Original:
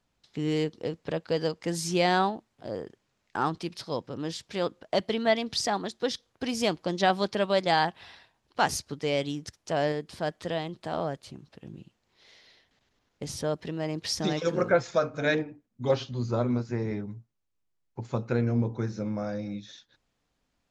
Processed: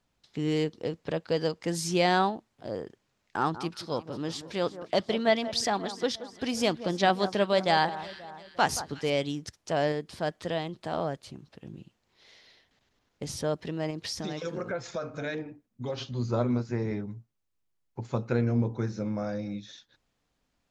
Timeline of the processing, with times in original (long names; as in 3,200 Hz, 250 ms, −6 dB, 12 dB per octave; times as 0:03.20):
0:03.36–0:09.10: delay that swaps between a low-pass and a high-pass 177 ms, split 1,600 Hz, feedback 65%, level −13 dB
0:13.90–0:15.98: downward compressor 3 to 1, threshold −32 dBFS